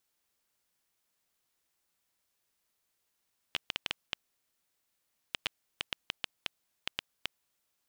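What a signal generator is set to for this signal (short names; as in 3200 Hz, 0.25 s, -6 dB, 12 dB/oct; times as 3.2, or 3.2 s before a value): random clicks 4.8/s -13 dBFS 3.83 s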